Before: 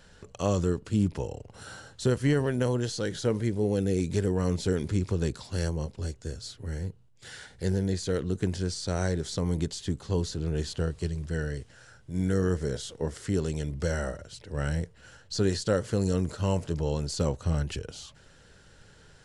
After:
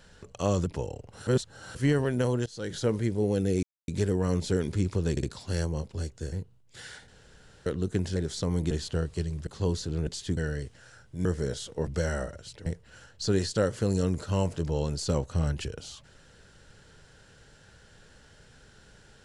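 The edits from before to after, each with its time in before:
0:00.66–0:01.07: remove
0:01.68–0:02.16: reverse
0:02.87–0:03.18: fade in, from −22 dB
0:04.04: splice in silence 0.25 s
0:05.27: stutter 0.06 s, 3 plays
0:06.36–0:06.80: remove
0:07.56–0:08.14: fill with room tone
0:08.64–0:09.11: remove
0:09.66–0:09.96: swap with 0:10.56–0:11.32
0:12.20–0:12.48: remove
0:13.10–0:13.73: remove
0:14.52–0:14.77: remove

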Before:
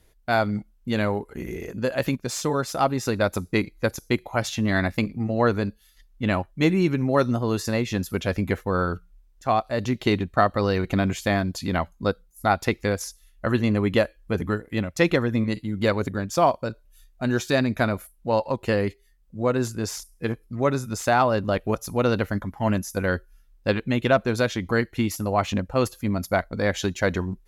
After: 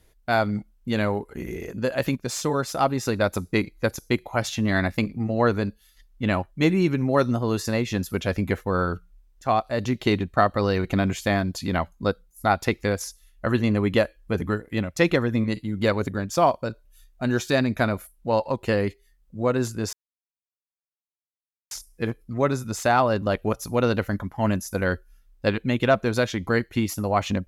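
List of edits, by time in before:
0:19.93: splice in silence 1.78 s

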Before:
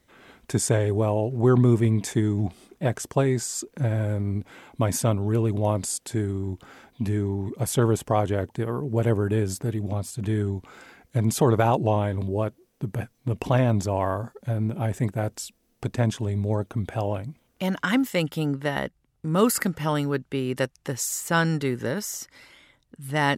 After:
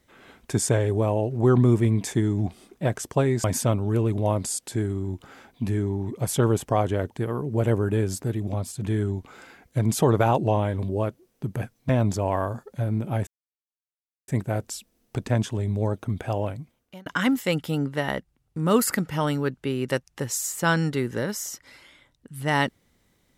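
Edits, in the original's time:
0:03.44–0:04.83: remove
0:13.28–0:13.58: remove
0:14.96: splice in silence 1.01 s
0:17.18–0:17.74: fade out

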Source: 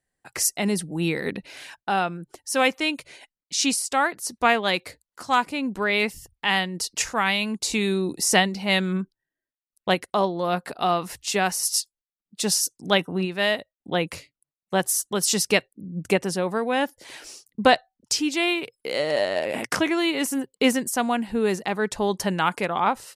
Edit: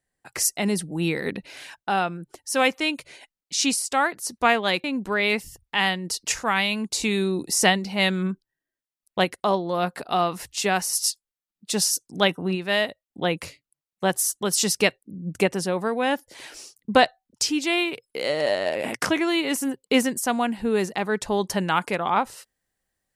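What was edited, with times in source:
0:04.84–0:05.54: remove

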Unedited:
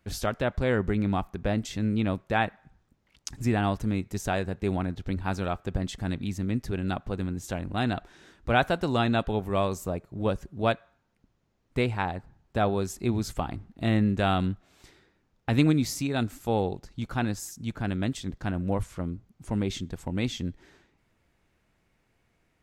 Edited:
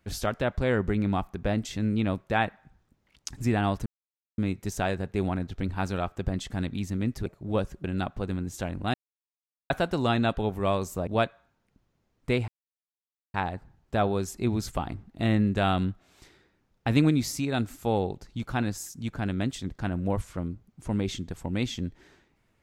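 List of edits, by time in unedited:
0:03.86: splice in silence 0.52 s
0:07.84–0:08.60: silence
0:09.97–0:10.55: move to 0:06.74
0:11.96: splice in silence 0.86 s

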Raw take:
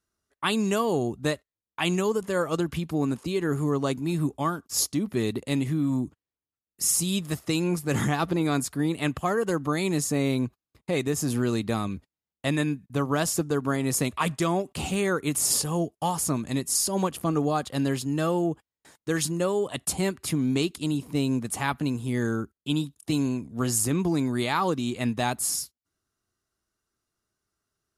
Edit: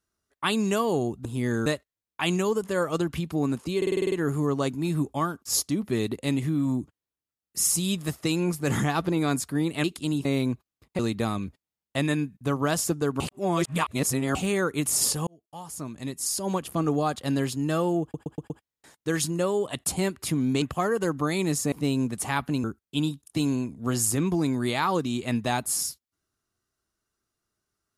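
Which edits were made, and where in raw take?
0:03.36: stutter 0.05 s, 8 plays
0:09.08–0:10.18: swap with 0:20.63–0:21.04
0:10.92–0:11.48: remove
0:13.69–0:14.84: reverse
0:15.76–0:17.34: fade in
0:18.51: stutter 0.12 s, 5 plays
0:21.96–0:22.37: move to 0:01.25

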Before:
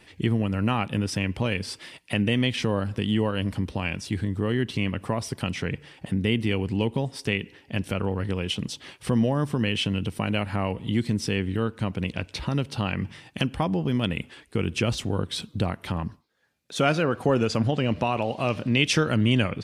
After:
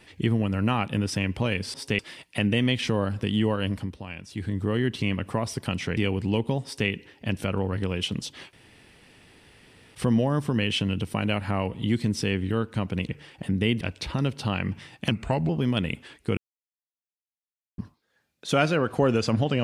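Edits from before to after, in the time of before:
0:03.42–0:04.33: duck −9.5 dB, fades 0.30 s
0:05.72–0:06.44: move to 0:12.14
0:07.11–0:07.36: duplicate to 0:01.74
0:09.00: splice in room tone 1.42 s
0:13.44–0:13.76: play speed 84%
0:14.64–0:16.05: silence

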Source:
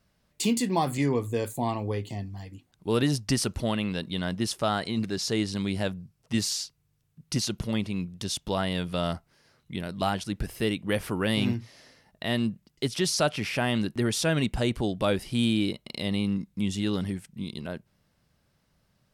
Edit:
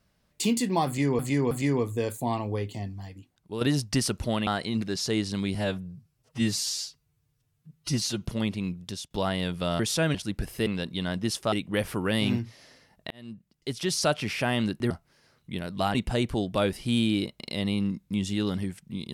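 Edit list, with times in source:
0:00.87–0:01.19: repeat, 3 plays
0:02.37–0:02.97: fade out linear, to −9 dB
0:03.83–0:04.69: move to 0:10.68
0:05.77–0:07.56: time-stretch 1.5×
0:08.15–0:08.43: fade out, to −16.5 dB
0:09.12–0:10.16: swap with 0:14.06–0:14.41
0:12.26–0:13.21: fade in

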